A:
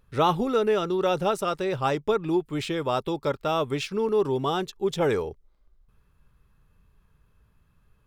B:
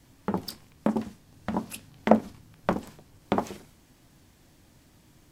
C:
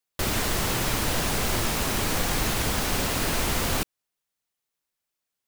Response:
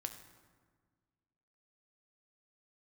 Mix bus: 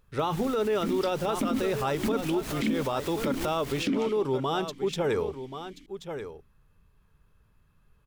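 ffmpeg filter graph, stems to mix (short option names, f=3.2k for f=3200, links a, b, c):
-filter_complex "[0:a]bandreject=f=60:t=h:w=6,bandreject=f=120:t=h:w=6,bandreject=f=180:t=h:w=6,bandreject=f=240:t=h:w=6,bandreject=f=300:t=h:w=6,volume=-1dB,asplit=3[a][b][c];[b]volume=-11.5dB[d];[1:a]highshelf=f=3.8k:g=10,aeval=exprs='0.794*sin(PI/2*2.82*val(0)/0.794)':c=same,asplit=3[e][f][g];[e]bandpass=f=270:t=q:w=8,volume=0dB[h];[f]bandpass=f=2.29k:t=q:w=8,volume=-6dB[i];[g]bandpass=f=3.01k:t=q:w=8,volume=-9dB[j];[h][i][j]amix=inputs=3:normalize=0,adelay=550,volume=1.5dB[k];[2:a]asoftclip=type=hard:threshold=-24.5dB,volume=-2.5dB[l];[c]apad=whole_len=241309[m];[l][m]sidechaincompress=threshold=-42dB:ratio=4:attack=6.3:release=102[n];[d]aecho=0:1:1082:1[o];[a][k][n][o]amix=inputs=4:normalize=0,alimiter=limit=-19dB:level=0:latency=1:release=32"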